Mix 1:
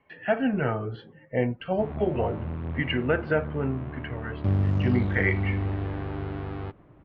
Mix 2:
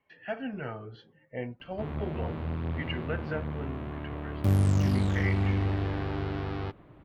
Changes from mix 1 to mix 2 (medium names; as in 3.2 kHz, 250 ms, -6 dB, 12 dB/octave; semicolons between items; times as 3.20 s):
speech -11.5 dB; master: remove distance through air 290 m